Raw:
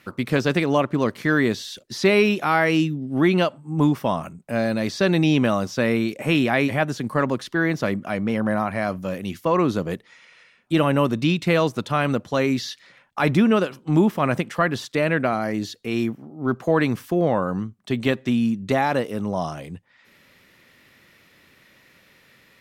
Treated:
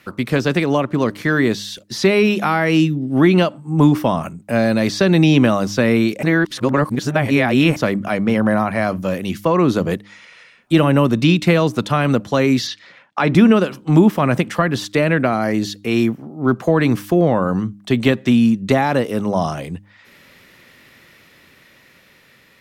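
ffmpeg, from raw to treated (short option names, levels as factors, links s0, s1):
-filter_complex "[0:a]asettb=1/sr,asplit=3[s0][s1][s2];[s0]atrim=end=12.674[s3];[s1]atrim=start=12.67:end=13.35,asetpts=PTS-STARTPTS,afade=t=in:d=0.004:c=qsin,afade=t=out:st=0.676:d=0.004:c=qsin,highpass=160,lowpass=5500[s4];[s2]atrim=start=13.346[s5];[s3][s4]acrossfade=d=0.004:c1=hsin:c2=qsin[s6];[s6][s5]acrossfade=d=0.004:c1=qsin:c2=hsin,asplit=3[s7][s8][s9];[s7]atrim=end=6.232[s10];[s8]atrim=start=6.228:end=7.762,asetpts=PTS-STARTPTS,areverse[s11];[s9]atrim=start=7.758[s12];[s10][s11]acrossfade=d=0.004:c1=hsin:c2=hsin[s13];[s13][s12]acrossfade=d=0.004:c1=hsin:c2=hsin,dynaudnorm=f=620:g=7:m=1.68,bandreject=f=101.4:t=h:w=4,bandreject=f=202.8:t=h:w=4,bandreject=f=304.2:t=h:w=4,acrossover=split=320[s14][s15];[s15]acompressor=threshold=0.112:ratio=4[s16];[s14][s16]amix=inputs=2:normalize=0,volume=1.58"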